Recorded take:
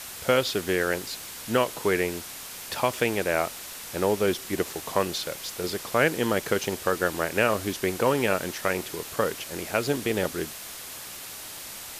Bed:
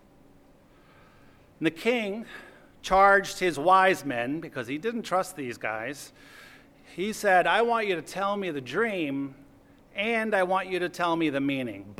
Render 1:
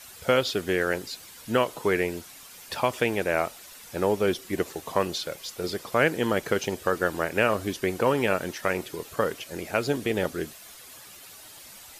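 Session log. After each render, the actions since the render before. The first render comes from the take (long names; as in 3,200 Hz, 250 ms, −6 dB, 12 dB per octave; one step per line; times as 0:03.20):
broadband denoise 10 dB, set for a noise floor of −40 dBFS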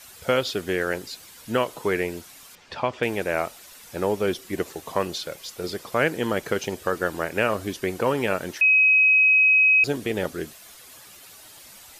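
0:02.55–0:03.03: high-frequency loss of the air 150 metres
0:08.61–0:09.84: beep over 2,540 Hz −13.5 dBFS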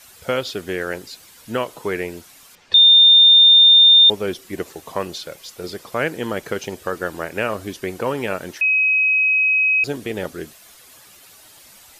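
0:02.74–0:04.10: beep over 3,620 Hz −6.5 dBFS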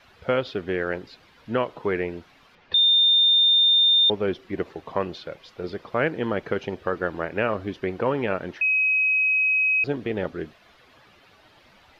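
high-frequency loss of the air 310 metres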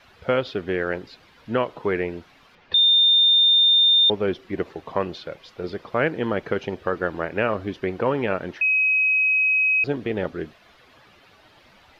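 level +1.5 dB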